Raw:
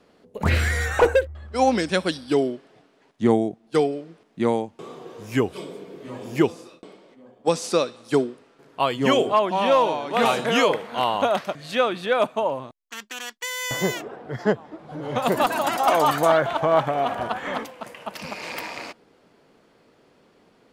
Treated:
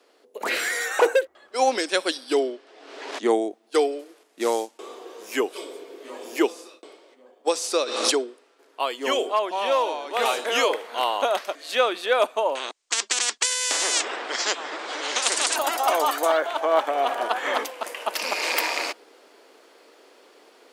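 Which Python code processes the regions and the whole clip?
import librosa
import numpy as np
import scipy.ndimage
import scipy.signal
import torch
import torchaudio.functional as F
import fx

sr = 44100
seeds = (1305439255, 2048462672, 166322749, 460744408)

y = fx.chain(x, sr, fx.bandpass_edges(low_hz=100.0, high_hz=6400.0),
    fx.pre_swell(db_per_s=42.0), at=(2.39, 3.23))
y = fx.chain(y, sr, fx.cvsd(bps=64000),
    fx.dynamic_eq(hz=6300.0, q=1.0, threshold_db=-55.0, ratio=4.0, max_db=7), at=(3.99, 4.78))
y = fx.chain(y, sr, fx.lowpass(hz=7500.0, slope=12),
    fx.pre_swell(db_per_s=45.0), at=(7.84, 8.28))
y = fx.chain(y, sr, fx.steep_lowpass(hz=8500.0, slope=48),
    fx.spectral_comp(ratio=4.0), at=(12.55, 15.56))
y = scipy.signal.sosfilt(scipy.signal.cheby2(4, 40, 160.0, 'highpass', fs=sr, output='sos'), y)
y = fx.high_shelf(y, sr, hz=3500.0, db=7.0)
y = fx.rider(y, sr, range_db=10, speed_s=2.0)
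y = F.gain(torch.from_numpy(y), -1.5).numpy()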